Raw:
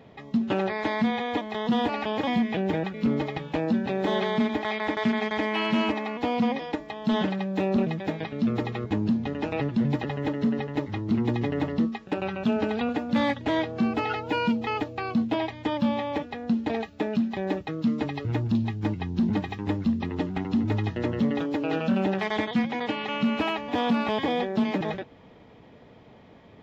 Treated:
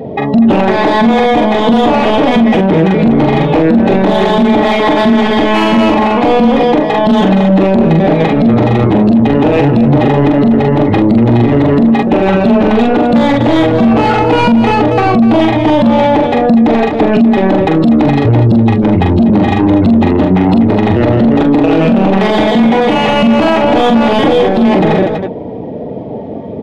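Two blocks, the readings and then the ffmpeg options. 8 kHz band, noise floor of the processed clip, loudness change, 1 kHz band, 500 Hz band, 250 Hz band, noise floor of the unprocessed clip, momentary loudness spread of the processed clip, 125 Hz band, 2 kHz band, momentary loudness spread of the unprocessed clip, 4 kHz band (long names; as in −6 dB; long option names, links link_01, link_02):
can't be measured, −21 dBFS, +18.0 dB, +19.0 dB, +19.5 dB, +18.0 dB, −51 dBFS, 2 LU, +18.5 dB, +14.5 dB, 5 LU, +15.0 dB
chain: -filter_complex "[0:a]afftdn=noise_reduction=18:noise_floor=-48,equalizer=frequency=1500:width=0.83:gain=-8,asoftclip=type=tanh:threshold=-26dB,asplit=2[link_01][link_02];[link_02]highpass=frequency=720:poles=1,volume=16dB,asoftclip=type=tanh:threshold=-26dB[link_03];[link_01][link_03]amix=inputs=2:normalize=0,lowpass=frequency=1000:poles=1,volume=-6dB,asplit=2[link_04][link_05];[link_05]aecho=0:1:43|244:0.668|0.316[link_06];[link_04][link_06]amix=inputs=2:normalize=0,alimiter=level_in=28.5dB:limit=-1dB:release=50:level=0:latency=1,volume=-1dB"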